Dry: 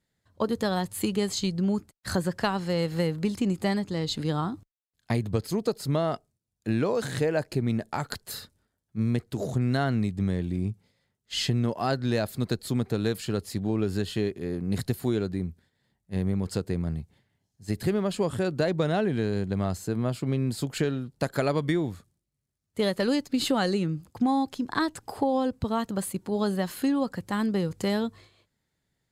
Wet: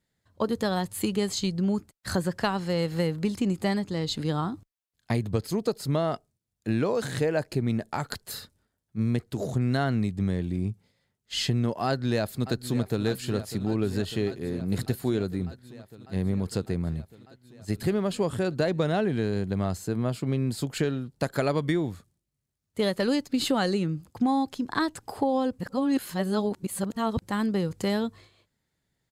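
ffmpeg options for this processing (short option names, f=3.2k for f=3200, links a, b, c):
-filter_complex "[0:a]asplit=2[a][b];[b]afade=t=in:st=11.86:d=0.01,afade=t=out:st=13.05:d=0.01,aecho=0:1:600|1200|1800|2400|3000|3600|4200|4800|5400|6000|6600|7200:0.223872|0.179098|0.143278|0.114623|0.091698|0.0733584|0.0586867|0.0469494|0.0375595|0.0300476|0.0240381|0.0192305[c];[a][c]amix=inputs=2:normalize=0,asplit=3[d][e][f];[d]atrim=end=25.592[g];[e]atrim=start=25.588:end=27.222,asetpts=PTS-STARTPTS,areverse[h];[f]atrim=start=27.218[i];[g][h]acrossfade=d=0.004:c1=hsin:c2=hsin[j];[j][i]acrossfade=d=0.004:c1=hsin:c2=hsin"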